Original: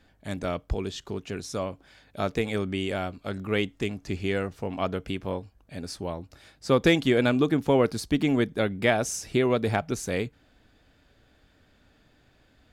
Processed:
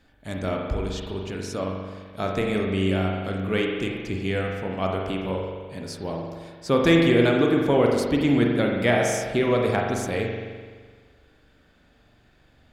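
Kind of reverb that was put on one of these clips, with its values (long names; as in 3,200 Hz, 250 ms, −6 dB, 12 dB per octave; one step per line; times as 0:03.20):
spring reverb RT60 1.6 s, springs 42 ms, chirp 45 ms, DRR 0 dB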